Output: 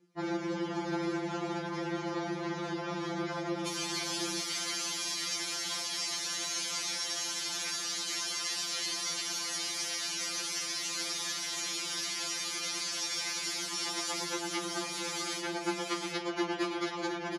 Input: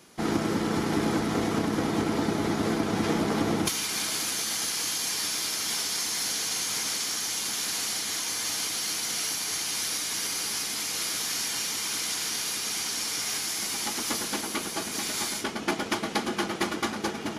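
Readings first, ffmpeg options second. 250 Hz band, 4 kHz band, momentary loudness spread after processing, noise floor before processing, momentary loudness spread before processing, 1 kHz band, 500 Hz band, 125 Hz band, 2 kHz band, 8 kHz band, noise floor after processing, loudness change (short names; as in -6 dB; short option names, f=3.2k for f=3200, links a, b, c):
-7.5 dB, -4.0 dB, 3 LU, -35 dBFS, 3 LU, -5.5 dB, -5.5 dB, -9.5 dB, -4.5 dB, -6.5 dB, -39 dBFS, -5.5 dB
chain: -af "afftdn=nr=21:nf=-45,acompressor=threshold=-28dB:ratio=6,highpass=160,lowpass=7.3k,aecho=1:1:721:0.531,afftfilt=real='re*2.83*eq(mod(b,8),0)':imag='im*2.83*eq(mod(b,8),0)':win_size=2048:overlap=0.75"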